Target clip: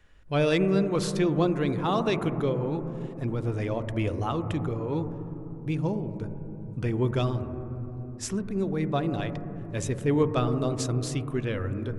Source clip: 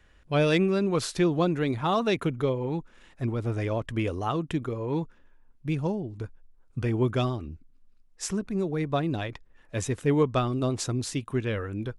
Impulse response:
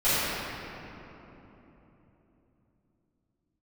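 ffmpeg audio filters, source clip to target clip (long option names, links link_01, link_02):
-filter_complex "[0:a]asplit=2[link_01][link_02];[link_02]lowpass=1400[link_03];[1:a]atrim=start_sample=2205,lowpass=2700,lowshelf=frequency=150:gain=7.5[link_04];[link_03][link_04]afir=irnorm=-1:irlink=0,volume=-24dB[link_05];[link_01][link_05]amix=inputs=2:normalize=0,volume=-1.5dB"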